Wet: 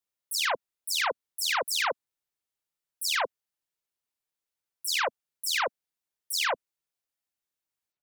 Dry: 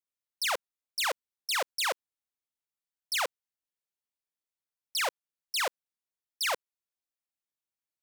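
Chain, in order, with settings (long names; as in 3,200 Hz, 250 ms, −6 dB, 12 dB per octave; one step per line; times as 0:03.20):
every frequency bin delayed by itself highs early, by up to 104 ms
level +3.5 dB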